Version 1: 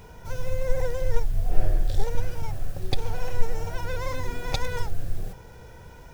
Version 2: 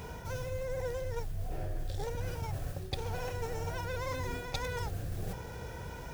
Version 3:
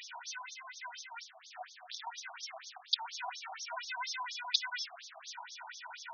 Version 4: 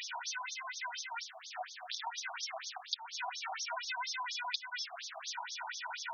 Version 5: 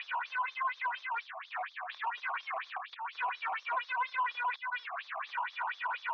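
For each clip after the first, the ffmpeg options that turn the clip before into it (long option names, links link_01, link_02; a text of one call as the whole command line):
ffmpeg -i in.wav -af "highpass=41,areverse,acompressor=threshold=-37dB:ratio=6,areverse,volume=4dB" out.wav
ffmpeg -i in.wav -af "equalizer=frequency=9700:width_type=o:width=2.3:gain=12,afftfilt=real='re*between(b*sr/1024,870*pow(4800/870,0.5+0.5*sin(2*PI*4.2*pts/sr))/1.41,870*pow(4800/870,0.5+0.5*sin(2*PI*4.2*pts/sr))*1.41)':imag='im*between(b*sr/1024,870*pow(4800/870,0.5+0.5*sin(2*PI*4.2*pts/sr))/1.41,870*pow(4800/870,0.5+0.5*sin(2*PI*4.2*pts/sr))*1.41)':win_size=1024:overlap=0.75,volume=5.5dB" out.wav
ffmpeg -i in.wav -af "acompressor=threshold=-42dB:ratio=6,volume=6dB" out.wav
ffmpeg -i in.wav -filter_complex "[0:a]asplit=2[link_01][link_02];[link_02]highpass=frequency=720:poles=1,volume=22dB,asoftclip=type=tanh:threshold=-19.5dB[link_03];[link_01][link_03]amix=inputs=2:normalize=0,lowpass=frequency=1500:poles=1,volume=-6dB,highpass=490,equalizer=frequency=1100:width_type=q:width=4:gain=10,equalizer=frequency=1700:width_type=q:width=4:gain=4,equalizer=frequency=2400:width_type=q:width=4:gain=4,lowpass=frequency=3300:width=0.5412,lowpass=frequency=3300:width=1.3066,volume=-7dB" out.wav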